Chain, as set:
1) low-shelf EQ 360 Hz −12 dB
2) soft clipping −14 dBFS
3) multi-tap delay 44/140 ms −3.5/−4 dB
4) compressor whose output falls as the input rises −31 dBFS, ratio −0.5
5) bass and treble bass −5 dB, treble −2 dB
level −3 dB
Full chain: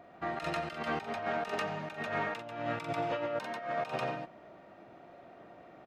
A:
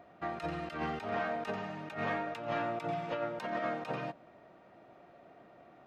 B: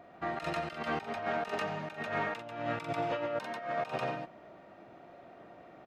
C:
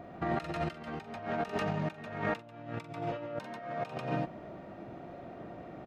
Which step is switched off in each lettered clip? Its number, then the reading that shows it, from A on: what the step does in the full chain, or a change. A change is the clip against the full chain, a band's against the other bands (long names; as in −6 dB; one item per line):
3, change in momentary loudness spread −15 LU
2, distortion level −23 dB
1, 125 Hz band +8.5 dB